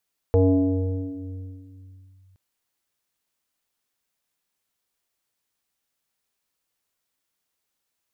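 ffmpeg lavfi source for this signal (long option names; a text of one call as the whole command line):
ffmpeg -f lavfi -i "aevalsrc='0.251*pow(10,-3*t/2.91)*sin(2*PI*94.4*t+2.3*clip(1-t/1.95,0,1)*sin(2*PI*1.98*94.4*t))':duration=2.02:sample_rate=44100" out.wav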